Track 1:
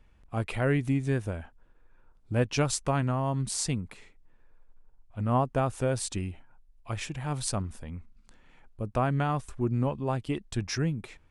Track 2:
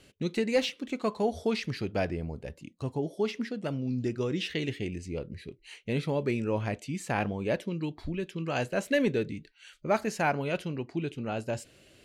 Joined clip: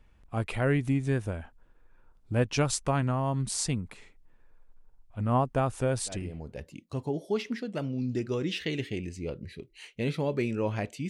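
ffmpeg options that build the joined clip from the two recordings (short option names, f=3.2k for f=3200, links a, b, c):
-filter_complex "[0:a]apad=whole_dur=11.09,atrim=end=11.09,atrim=end=6.6,asetpts=PTS-STARTPTS[a];[1:a]atrim=start=1.91:end=6.98,asetpts=PTS-STARTPTS[b];[a][b]acrossfade=d=0.58:c1=tri:c2=tri"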